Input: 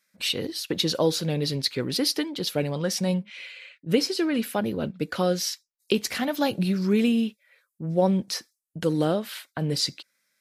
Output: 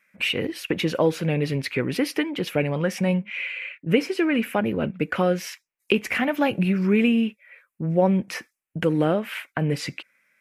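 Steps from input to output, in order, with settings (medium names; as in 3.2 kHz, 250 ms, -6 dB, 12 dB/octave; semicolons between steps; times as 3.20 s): resonant high shelf 3.2 kHz -9 dB, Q 3; in parallel at +1 dB: compression, threshold -32 dBFS, peak gain reduction 16 dB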